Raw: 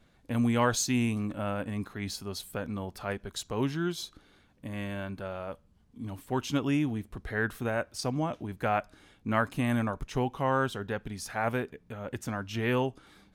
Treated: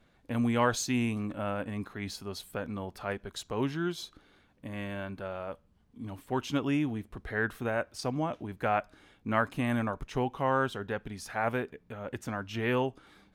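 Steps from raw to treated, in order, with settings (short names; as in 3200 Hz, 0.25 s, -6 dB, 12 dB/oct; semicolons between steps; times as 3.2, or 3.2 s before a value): tone controls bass -3 dB, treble -5 dB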